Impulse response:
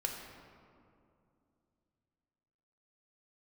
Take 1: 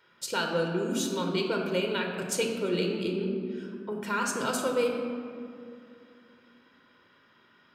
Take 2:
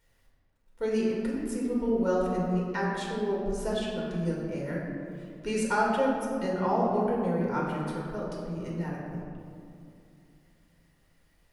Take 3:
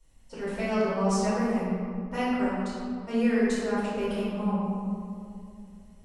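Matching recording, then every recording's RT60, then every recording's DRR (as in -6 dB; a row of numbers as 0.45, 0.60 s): 1; 2.6, 2.5, 2.5 s; 1.0, -4.0, -12.5 dB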